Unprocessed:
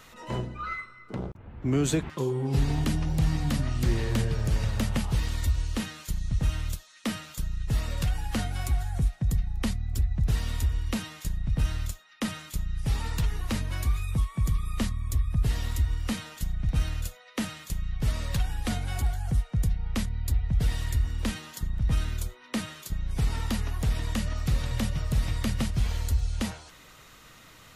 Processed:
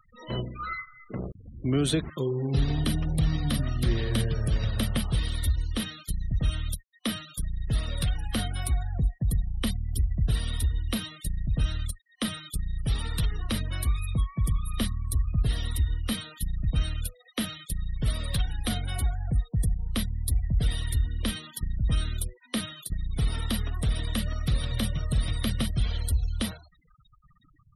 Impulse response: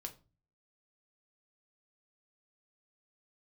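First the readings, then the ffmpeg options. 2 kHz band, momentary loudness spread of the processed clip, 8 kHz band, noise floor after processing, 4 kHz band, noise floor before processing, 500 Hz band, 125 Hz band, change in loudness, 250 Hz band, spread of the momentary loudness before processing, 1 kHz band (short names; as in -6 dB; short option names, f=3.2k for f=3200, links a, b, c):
-1.0 dB, 8 LU, +1.5 dB, -60 dBFS, +4.0 dB, -52 dBFS, 0.0 dB, 0.0 dB, 0.0 dB, 0.0 dB, 8 LU, -2.0 dB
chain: -af "afftfilt=real='re*gte(hypot(re,im),0.01)':imag='im*gte(hypot(re,im),0.01)':win_size=1024:overlap=0.75,superequalizer=9b=0.501:13b=2.24:15b=0.355:16b=3.55"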